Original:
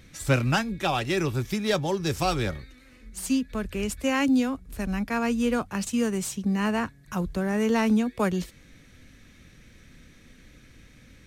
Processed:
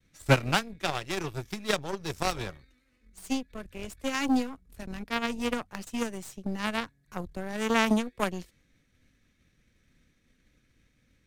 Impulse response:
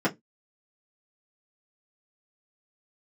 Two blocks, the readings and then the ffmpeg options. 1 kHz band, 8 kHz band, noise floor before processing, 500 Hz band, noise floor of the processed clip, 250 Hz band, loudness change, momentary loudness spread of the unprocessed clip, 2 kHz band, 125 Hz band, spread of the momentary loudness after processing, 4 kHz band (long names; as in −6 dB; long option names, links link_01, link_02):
−2.5 dB, −5.0 dB, −54 dBFS, −4.5 dB, −69 dBFS, −6.5 dB, −4.0 dB, 9 LU, −1.5 dB, −5.5 dB, 15 LU, −0.5 dB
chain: -af "agate=range=-33dB:threshold=-49dB:ratio=3:detection=peak,aeval=exprs='0.251*(cos(1*acos(clip(val(0)/0.251,-1,1)))-cos(1*PI/2))+0.0891*(cos(3*acos(clip(val(0)/0.251,-1,1)))-cos(3*PI/2))+0.00891*(cos(5*acos(clip(val(0)/0.251,-1,1)))-cos(5*PI/2))+0.00447*(cos(8*acos(clip(val(0)/0.251,-1,1)))-cos(8*PI/2))':channel_layout=same,volume=5dB"